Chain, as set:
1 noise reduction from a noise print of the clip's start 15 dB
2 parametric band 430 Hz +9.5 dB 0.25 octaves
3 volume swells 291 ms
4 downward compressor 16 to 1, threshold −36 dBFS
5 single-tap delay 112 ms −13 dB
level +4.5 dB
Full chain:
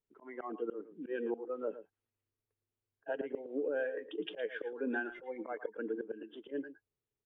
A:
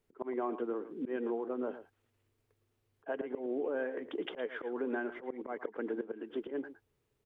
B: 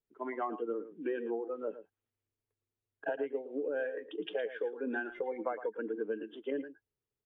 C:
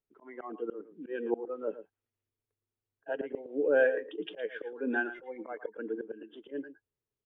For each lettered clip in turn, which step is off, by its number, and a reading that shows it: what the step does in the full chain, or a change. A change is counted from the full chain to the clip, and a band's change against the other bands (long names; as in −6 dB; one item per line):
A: 1, 2 kHz band −5.0 dB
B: 3, 1 kHz band +4.5 dB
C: 4, average gain reduction 1.5 dB